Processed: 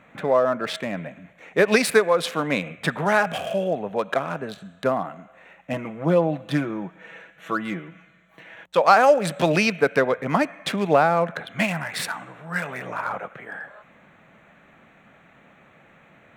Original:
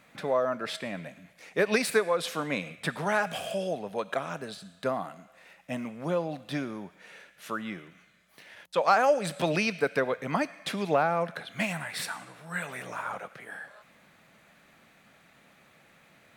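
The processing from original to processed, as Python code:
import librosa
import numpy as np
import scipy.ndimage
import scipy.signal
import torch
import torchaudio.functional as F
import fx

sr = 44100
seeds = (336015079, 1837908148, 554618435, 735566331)

y = fx.wiener(x, sr, points=9)
y = fx.comb(y, sr, ms=6.1, depth=0.65, at=(5.73, 8.64))
y = y * librosa.db_to_amplitude(7.5)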